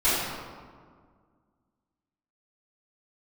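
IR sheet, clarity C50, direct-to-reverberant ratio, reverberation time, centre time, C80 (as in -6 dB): -2.5 dB, -17.5 dB, 1.8 s, 113 ms, 0.0 dB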